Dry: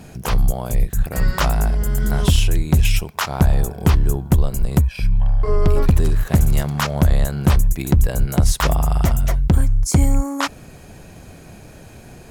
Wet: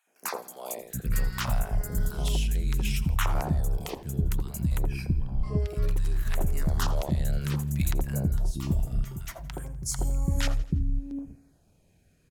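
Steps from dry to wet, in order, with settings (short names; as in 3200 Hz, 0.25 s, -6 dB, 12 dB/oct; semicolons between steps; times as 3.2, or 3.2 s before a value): gate -30 dBFS, range -23 dB; compressor 6:1, threshold -23 dBFS, peak gain reduction 13 dB; 8.26–9.21 resonator 130 Hz, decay 0.24 s, harmonics odd, mix 80%; three bands offset in time highs, mids, lows 70/780 ms, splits 330/1000 Hz; LFO notch saw down 0.63 Hz 350–5100 Hz; on a send: feedback echo 83 ms, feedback 52%, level -18.5 dB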